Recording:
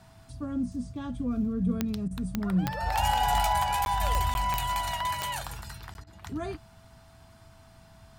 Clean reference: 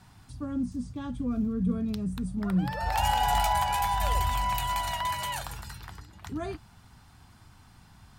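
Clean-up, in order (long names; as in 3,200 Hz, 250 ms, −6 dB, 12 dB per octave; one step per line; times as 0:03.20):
click removal
notch filter 660 Hz, Q 30
repair the gap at 0:03.85/0:04.34/0:05.94, 11 ms
repair the gap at 0:02.08/0:06.04, 28 ms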